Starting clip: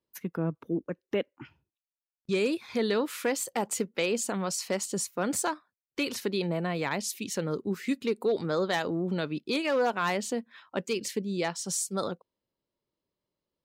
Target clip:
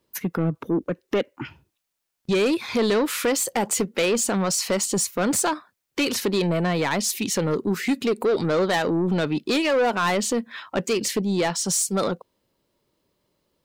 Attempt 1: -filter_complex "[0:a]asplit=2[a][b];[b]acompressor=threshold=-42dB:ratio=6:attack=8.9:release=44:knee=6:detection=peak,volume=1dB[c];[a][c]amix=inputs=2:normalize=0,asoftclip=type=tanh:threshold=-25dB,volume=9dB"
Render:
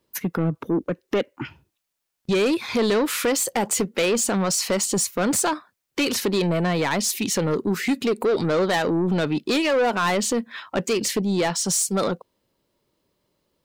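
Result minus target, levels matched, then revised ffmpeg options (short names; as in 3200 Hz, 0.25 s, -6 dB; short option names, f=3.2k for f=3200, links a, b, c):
compressor: peak gain reduction -6 dB
-filter_complex "[0:a]asplit=2[a][b];[b]acompressor=threshold=-49.5dB:ratio=6:attack=8.9:release=44:knee=6:detection=peak,volume=1dB[c];[a][c]amix=inputs=2:normalize=0,asoftclip=type=tanh:threshold=-25dB,volume=9dB"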